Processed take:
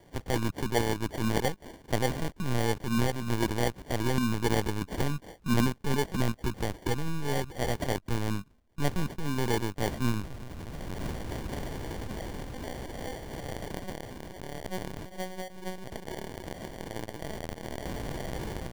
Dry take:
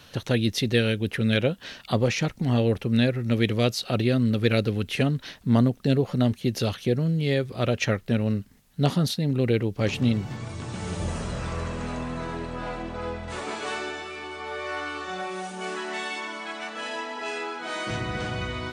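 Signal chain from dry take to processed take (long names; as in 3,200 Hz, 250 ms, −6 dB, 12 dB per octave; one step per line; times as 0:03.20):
linear-prediction vocoder at 8 kHz pitch kept
decimation without filtering 34×
level −5 dB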